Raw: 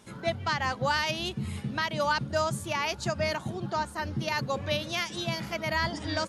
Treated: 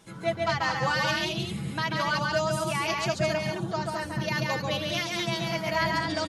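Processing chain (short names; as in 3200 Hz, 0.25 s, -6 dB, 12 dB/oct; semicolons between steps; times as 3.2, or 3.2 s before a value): comb 6.1 ms, depth 55%; tapped delay 0.139/0.215 s -3/-5 dB; gain -1.5 dB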